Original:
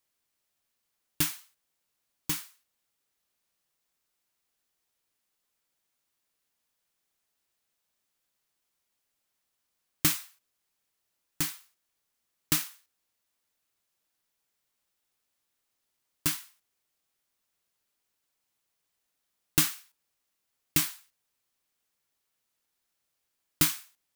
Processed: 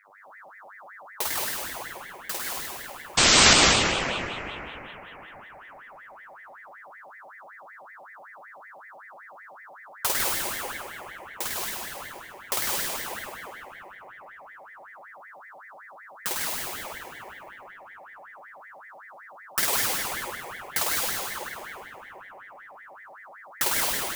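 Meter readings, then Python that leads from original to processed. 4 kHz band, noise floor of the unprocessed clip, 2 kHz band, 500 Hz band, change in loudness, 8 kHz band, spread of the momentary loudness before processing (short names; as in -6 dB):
+13.0 dB, -81 dBFS, +14.5 dB, +19.5 dB, +4.5 dB, +8.5 dB, 15 LU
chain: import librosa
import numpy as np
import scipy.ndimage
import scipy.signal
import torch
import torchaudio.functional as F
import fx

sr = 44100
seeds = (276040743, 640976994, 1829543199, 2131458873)

y = fx.dmg_buzz(x, sr, base_hz=100.0, harmonics=5, level_db=-57.0, tilt_db=-4, odd_only=False)
y = fx.room_flutter(y, sr, wall_m=8.7, rt60_s=1.4)
y = fx.spec_paint(y, sr, seeds[0], shape='noise', start_s=3.17, length_s=0.37, low_hz=290.0, high_hz=6900.0, level_db=-15.0)
y = fx.rev_plate(y, sr, seeds[1], rt60_s=3.4, hf_ratio=0.35, predelay_ms=110, drr_db=-3.5)
y = fx.ring_lfo(y, sr, carrier_hz=1300.0, swing_pct=50, hz=5.3)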